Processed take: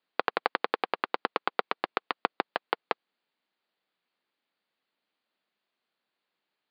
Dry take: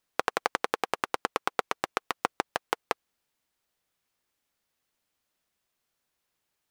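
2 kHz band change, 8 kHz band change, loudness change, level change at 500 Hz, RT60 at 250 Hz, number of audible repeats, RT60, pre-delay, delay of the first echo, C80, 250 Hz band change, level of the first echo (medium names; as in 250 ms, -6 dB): 0.0 dB, under -35 dB, 0.0 dB, 0.0 dB, no reverb, no echo, no reverb, no reverb, no echo, no reverb, -0.5 dB, no echo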